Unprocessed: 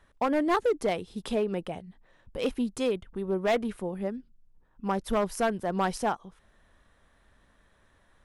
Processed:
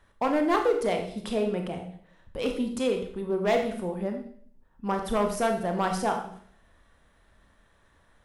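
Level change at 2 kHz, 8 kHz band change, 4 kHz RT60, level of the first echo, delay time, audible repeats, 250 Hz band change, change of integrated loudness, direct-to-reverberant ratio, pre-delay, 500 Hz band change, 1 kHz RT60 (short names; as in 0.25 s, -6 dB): +1.0 dB, +1.5 dB, 0.55 s, none, none, none, +1.5 dB, +1.5 dB, 3.5 dB, 23 ms, +2.0 dB, 0.55 s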